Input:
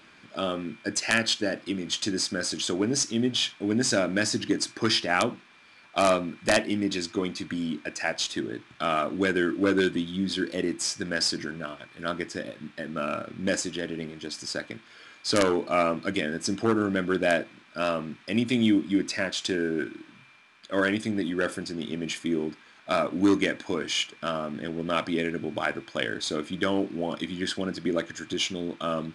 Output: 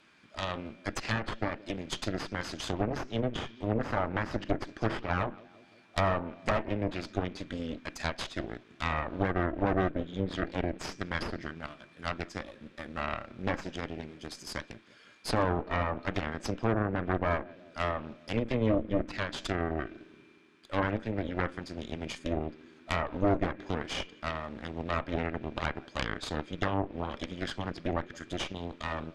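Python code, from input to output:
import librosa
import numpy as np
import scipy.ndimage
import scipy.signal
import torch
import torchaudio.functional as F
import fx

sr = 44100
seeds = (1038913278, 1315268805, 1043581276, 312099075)

y = fx.echo_filtered(x, sr, ms=173, feedback_pct=67, hz=1000.0, wet_db=-17.5)
y = fx.cheby_harmonics(y, sr, harmonics=(6,), levels_db=(-7,), full_scale_db=-8.0)
y = fx.env_lowpass_down(y, sr, base_hz=1500.0, full_db=-16.5)
y = y * 10.0 ** (-8.5 / 20.0)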